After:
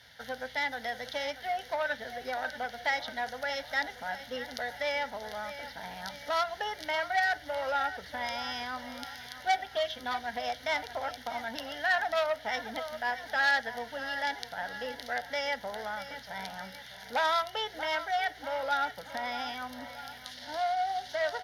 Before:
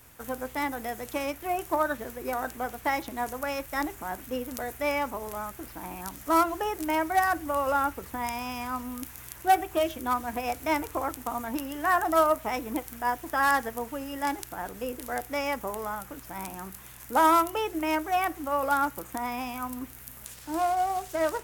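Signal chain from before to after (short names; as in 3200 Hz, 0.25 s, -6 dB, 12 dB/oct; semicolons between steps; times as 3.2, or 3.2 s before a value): air absorption 62 m; fixed phaser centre 1700 Hz, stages 8; feedback echo 0.634 s, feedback 48%, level -14.5 dB; in parallel at -2.5 dB: compressor, threshold -35 dBFS, peak gain reduction 17 dB; on the sum: weighting filter D; core saturation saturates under 2000 Hz; gain -4 dB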